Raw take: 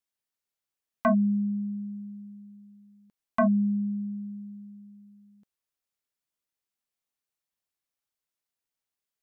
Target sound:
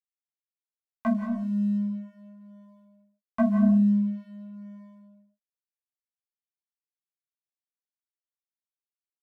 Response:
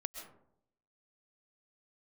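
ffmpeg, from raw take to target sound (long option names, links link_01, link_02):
-filter_complex "[0:a]adynamicequalizer=threshold=0.0126:dfrequency=180:dqfactor=0.75:tfrequency=180:tqfactor=0.75:attack=5:release=100:ratio=0.375:range=2:mode=boostabove:tftype=bell,acrossover=split=490[link_01][link_02];[link_01]dynaudnorm=framelen=290:gausssize=9:maxgain=5.5dB[link_03];[link_03][link_02]amix=inputs=2:normalize=0,flanger=delay=6.7:depth=6.2:regen=1:speed=0.47:shape=sinusoidal,aeval=exprs='sgn(val(0))*max(abs(val(0))-0.00237,0)':channel_layout=same,asplit=2[link_04][link_05];[link_05]adelay=18,volume=-2.5dB[link_06];[link_04][link_06]amix=inputs=2:normalize=0[link_07];[1:a]atrim=start_sample=2205,afade=type=out:start_time=0.33:duration=0.01,atrim=end_sample=14994,asetrate=34839,aresample=44100[link_08];[link_07][link_08]afir=irnorm=-1:irlink=0,volume=-2dB"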